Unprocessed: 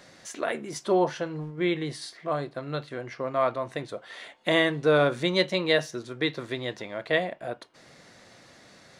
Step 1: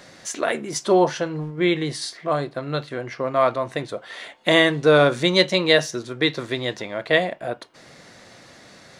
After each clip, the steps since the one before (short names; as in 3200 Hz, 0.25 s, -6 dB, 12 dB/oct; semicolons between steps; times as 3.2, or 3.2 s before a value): dynamic EQ 6500 Hz, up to +5 dB, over -46 dBFS, Q 0.85; gain +6 dB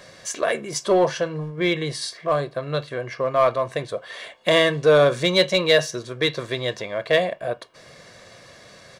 comb 1.8 ms, depth 49%; in parallel at -6 dB: hard clip -15.5 dBFS, distortion -8 dB; on the sum: gain -4 dB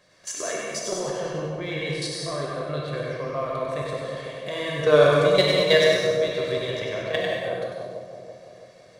level quantiser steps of 15 dB; split-band echo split 960 Hz, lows 0.332 s, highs 97 ms, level -5 dB; non-linear reverb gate 0.25 s flat, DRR -2 dB; gain -2 dB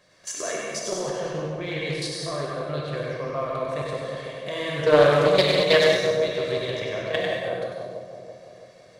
Doppler distortion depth 0.25 ms